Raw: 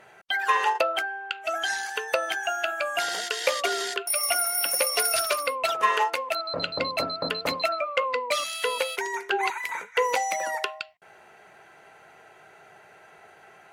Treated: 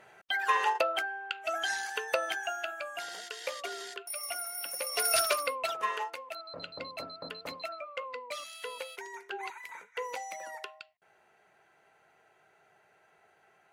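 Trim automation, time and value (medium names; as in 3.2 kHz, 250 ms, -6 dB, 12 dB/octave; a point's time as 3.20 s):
2.26 s -4.5 dB
2.99 s -12.5 dB
4.80 s -12.5 dB
5.16 s -1 dB
6.15 s -13.5 dB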